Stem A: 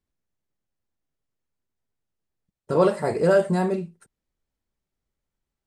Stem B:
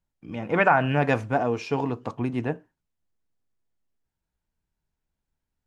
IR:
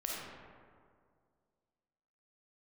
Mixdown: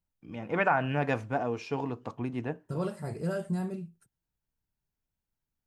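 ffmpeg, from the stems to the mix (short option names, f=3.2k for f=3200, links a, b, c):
-filter_complex "[0:a]equalizer=f=125:t=o:w=1:g=11,equalizer=f=500:t=o:w=1:g=-7,equalizer=f=1k:t=o:w=1:g=-8,equalizer=f=2k:t=o:w=1:g=-10,equalizer=f=4k:t=o:w=1:g=-10,equalizer=f=8k:t=o:w=1:g=-10,tiltshelf=f=970:g=-6.5,volume=-5.5dB[a];[1:a]volume=-6.5dB[b];[a][b]amix=inputs=2:normalize=0"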